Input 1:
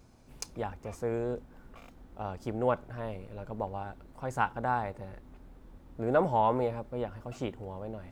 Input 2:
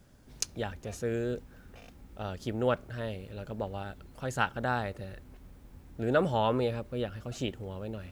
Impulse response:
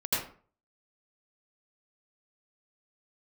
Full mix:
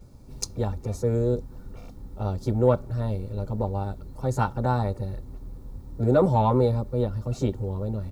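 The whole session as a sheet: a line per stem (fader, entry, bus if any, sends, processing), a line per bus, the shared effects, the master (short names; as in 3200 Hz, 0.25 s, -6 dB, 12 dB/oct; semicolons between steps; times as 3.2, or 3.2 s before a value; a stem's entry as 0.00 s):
-4.5 dB, 0.00 s, no send, comb 2.2 ms, depth 80%; soft clip -12.5 dBFS, distortion -25 dB
+2.0 dB, 9.6 ms, no send, Chebyshev band-stop 1200–3900 Hz, order 3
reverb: off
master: low shelf 360 Hz +8.5 dB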